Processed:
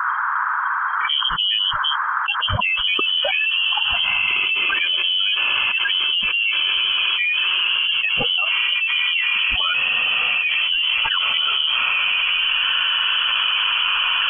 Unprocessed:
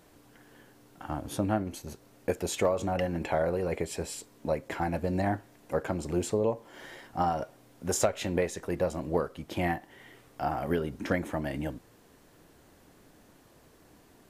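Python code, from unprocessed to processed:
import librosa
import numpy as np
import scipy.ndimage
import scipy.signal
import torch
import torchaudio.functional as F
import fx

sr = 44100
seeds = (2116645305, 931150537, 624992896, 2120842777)

p1 = fx.bin_expand(x, sr, power=3.0)
p2 = fx.high_shelf(p1, sr, hz=2500.0, db=-7.0)
p3 = fx.level_steps(p2, sr, step_db=21)
p4 = p2 + (p3 * librosa.db_to_amplitude(1.0))
p5 = fx.freq_invert(p4, sr, carrier_hz=3200)
p6 = p5 + fx.echo_diffused(p5, sr, ms=1783, feedback_pct=44, wet_db=-13.5, dry=0)
p7 = fx.dmg_noise_band(p6, sr, seeds[0], low_hz=950.0, high_hz=1600.0, level_db=-66.0)
p8 = fx.env_flatten(p7, sr, amount_pct=100)
y = p8 * librosa.db_to_amplitude(4.5)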